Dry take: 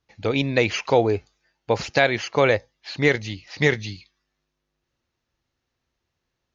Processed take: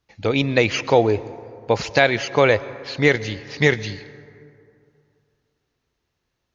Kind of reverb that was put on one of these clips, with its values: plate-style reverb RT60 2.6 s, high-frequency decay 0.4×, pre-delay 0.1 s, DRR 17 dB; gain +2.5 dB

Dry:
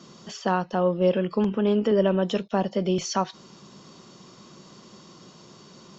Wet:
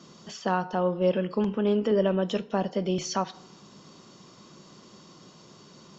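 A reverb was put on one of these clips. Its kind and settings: FDN reverb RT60 0.89 s, high-frequency decay 0.55×, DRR 15 dB; gain -2.5 dB

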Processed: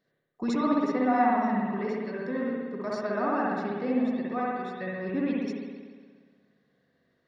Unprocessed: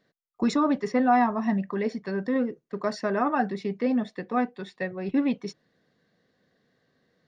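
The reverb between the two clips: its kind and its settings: spring tank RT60 1.6 s, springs 59 ms, chirp 80 ms, DRR -4.5 dB; gain -7.5 dB

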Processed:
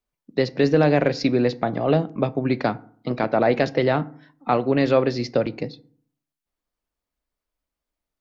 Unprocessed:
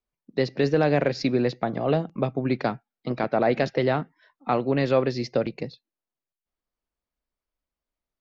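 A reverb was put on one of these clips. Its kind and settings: FDN reverb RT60 0.52 s, low-frequency decay 1.3×, high-frequency decay 0.5×, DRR 15 dB; gain +3 dB

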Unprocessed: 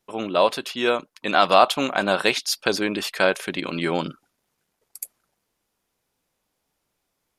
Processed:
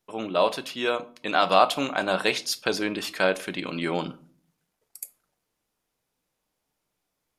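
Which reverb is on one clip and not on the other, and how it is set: shoebox room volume 340 m³, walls furnished, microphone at 0.5 m; gain -4 dB

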